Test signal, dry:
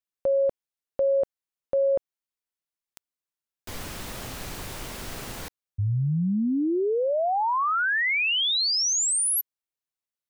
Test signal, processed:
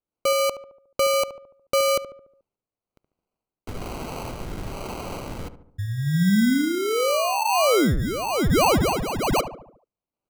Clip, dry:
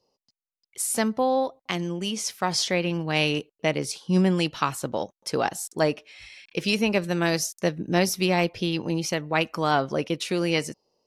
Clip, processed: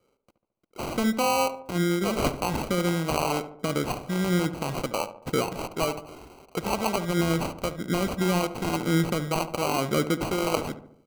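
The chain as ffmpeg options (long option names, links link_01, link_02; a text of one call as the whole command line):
ffmpeg -i in.wav -filter_complex "[0:a]alimiter=limit=-18.5dB:level=0:latency=1:release=93,acrossover=split=580[link_01][link_02];[link_01]aeval=exprs='val(0)*(1-0.7/2+0.7/2*cos(2*PI*1.1*n/s))':channel_layout=same[link_03];[link_02]aeval=exprs='val(0)*(1-0.7/2-0.7/2*cos(2*PI*1.1*n/s))':channel_layout=same[link_04];[link_03][link_04]amix=inputs=2:normalize=0,acrusher=samples=25:mix=1:aa=0.000001,asplit=2[link_05][link_06];[link_06]adelay=72,lowpass=frequency=1400:poles=1,volume=-11dB,asplit=2[link_07][link_08];[link_08]adelay=72,lowpass=frequency=1400:poles=1,volume=0.54,asplit=2[link_09][link_10];[link_10]adelay=72,lowpass=frequency=1400:poles=1,volume=0.54,asplit=2[link_11][link_12];[link_12]adelay=72,lowpass=frequency=1400:poles=1,volume=0.54,asplit=2[link_13][link_14];[link_14]adelay=72,lowpass=frequency=1400:poles=1,volume=0.54,asplit=2[link_15][link_16];[link_16]adelay=72,lowpass=frequency=1400:poles=1,volume=0.54[link_17];[link_05][link_07][link_09][link_11][link_13][link_15][link_17]amix=inputs=7:normalize=0,volume=6.5dB" out.wav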